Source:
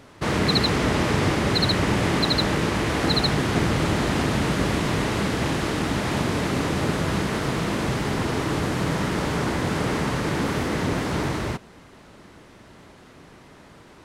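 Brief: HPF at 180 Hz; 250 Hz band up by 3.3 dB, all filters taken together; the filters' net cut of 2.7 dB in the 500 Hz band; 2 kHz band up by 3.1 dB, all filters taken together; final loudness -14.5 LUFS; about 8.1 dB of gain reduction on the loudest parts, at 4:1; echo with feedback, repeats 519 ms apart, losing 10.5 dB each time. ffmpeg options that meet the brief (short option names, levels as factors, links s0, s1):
-af "highpass=180,equalizer=f=250:t=o:g=8,equalizer=f=500:t=o:g=-7,equalizer=f=2000:t=o:g=4,acompressor=threshold=0.0501:ratio=4,aecho=1:1:519|1038|1557:0.299|0.0896|0.0269,volume=4.73"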